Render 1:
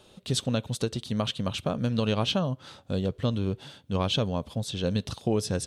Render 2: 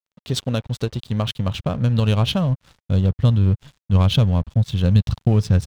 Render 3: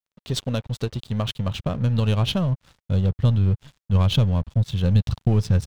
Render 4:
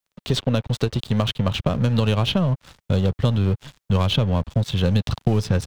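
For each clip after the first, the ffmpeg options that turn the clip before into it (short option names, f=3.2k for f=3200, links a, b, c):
-af "adynamicsmooth=sensitivity=4.5:basefreq=3.6k,aeval=exprs='sgn(val(0))*max(abs(val(0))-0.00473,0)':c=same,asubboost=boost=7.5:cutoff=130,volume=5dB"
-af "aeval=exprs='if(lt(val(0),0),0.708*val(0),val(0))':c=same,volume=-1dB"
-filter_complex "[0:a]acrossover=split=230|3700[a][b][c];[a]acompressor=threshold=-31dB:ratio=4[d];[b]acompressor=threshold=-30dB:ratio=4[e];[c]acompressor=threshold=-46dB:ratio=4[f];[d][e][f]amix=inputs=3:normalize=0,volume=9dB"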